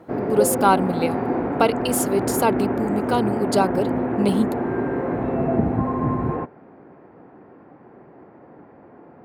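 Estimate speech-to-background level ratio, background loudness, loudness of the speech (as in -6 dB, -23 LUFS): 1.0 dB, -24.0 LUFS, -23.0 LUFS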